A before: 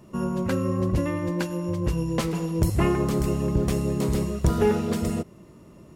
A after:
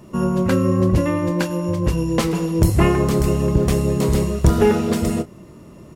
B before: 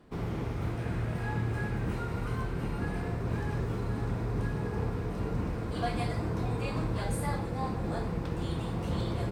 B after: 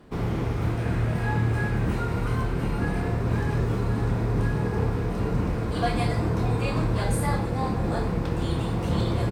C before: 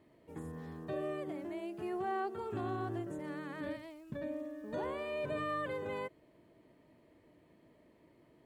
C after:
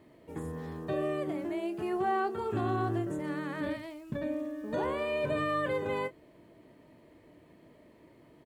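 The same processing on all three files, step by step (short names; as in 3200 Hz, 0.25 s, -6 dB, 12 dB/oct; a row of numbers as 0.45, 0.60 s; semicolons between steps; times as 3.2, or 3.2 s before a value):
doubler 27 ms -12 dB; gain +6.5 dB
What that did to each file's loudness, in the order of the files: +6.5, +7.0, +6.5 LU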